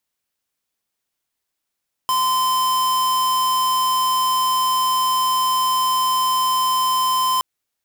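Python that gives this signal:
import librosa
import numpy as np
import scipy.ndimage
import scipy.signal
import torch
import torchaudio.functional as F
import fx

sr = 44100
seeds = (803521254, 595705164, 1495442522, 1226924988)

y = fx.tone(sr, length_s=5.32, wave='square', hz=1030.0, level_db=-18.5)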